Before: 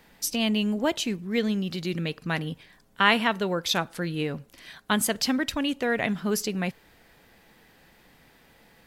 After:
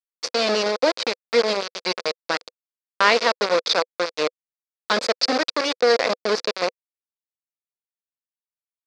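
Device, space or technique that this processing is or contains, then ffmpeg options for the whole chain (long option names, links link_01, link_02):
hand-held game console: -filter_complex "[0:a]acrusher=bits=3:mix=0:aa=0.000001,highpass=420,equalizer=frequency=500:width_type=q:width=4:gain=10,equalizer=frequency=840:width_type=q:width=4:gain=-5,equalizer=frequency=1800:width_type=q:width=4:gain=-4,equalizer=frequency=3000:width_type=q:width=4:gain=-9,equalizer=frequency=4700:width_type=q:width=4:gain=7,lowpass=frequency=5100:width=0.5412,lowpass=frequency=5100:width=1.3066,asettb=1/sr,asplit=3[link_01][link_02][link_03];[link_01]atrim=end=1.624[link_04];[link_02]atrim=start=1.62:end=2.27,asetpts=PTS-STARTPTS,afade=type=in:duration=0.004:curve=qsin,afade=type=out:start_time=0.646:duration=0.004:curve=qsin,aecho=1:1:4.7:0.35,atrim=end_sample=28665[link_05];[link_03]atrim=start=2.266[link_06];[link_04][link_05]acrossfade=duration=0.004:curve1=hsin:curve2=qsin[link_07];[link_07][link_06]acrossfade=duration=0.004:curve1=qsin:curve2=hsin,volume=5.5dB"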